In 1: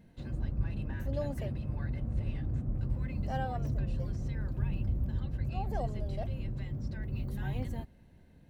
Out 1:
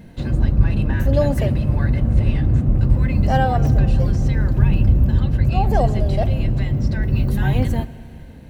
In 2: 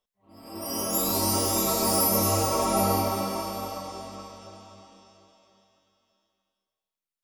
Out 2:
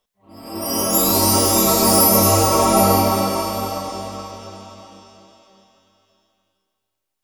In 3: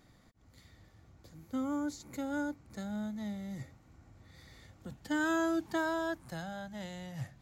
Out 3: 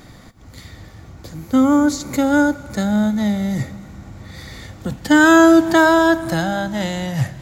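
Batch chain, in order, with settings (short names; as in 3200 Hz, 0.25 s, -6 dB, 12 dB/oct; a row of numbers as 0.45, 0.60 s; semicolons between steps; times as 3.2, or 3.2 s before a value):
Schroeder reverb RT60 3.1 s, combs from 27 ms, DRR 16.5 dB; normalise peaks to -1.5 dBFS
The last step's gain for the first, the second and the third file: +17.0, +9.5, +20.5 dB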